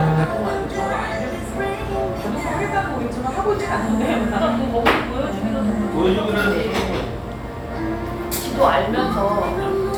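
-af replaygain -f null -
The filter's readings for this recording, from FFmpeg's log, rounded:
track_gain = +2.3 dB
track_peak = 0.498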